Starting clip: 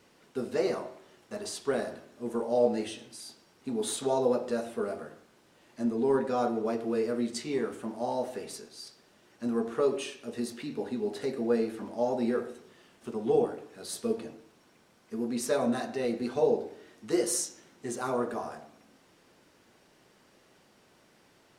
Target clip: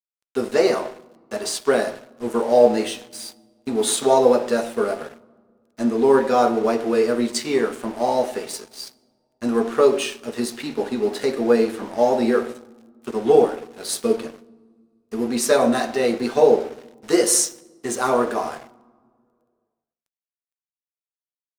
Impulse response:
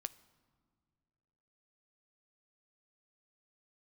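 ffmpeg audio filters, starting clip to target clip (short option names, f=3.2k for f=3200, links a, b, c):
-filter_complex "[0:a]highpass=f=330:p=1,aeval=exprs='sgn(val(0))*max(abs(val(0))-0.00251,0)':c=same,asplit=2[a][b];[1:a]atrim=start_sample=2205[c];[b][c]afir=irnorm=-1:irlink=0,volume=8dB[d];[a][d]amix=inputs=2:normalize=0,volume=4.5dB"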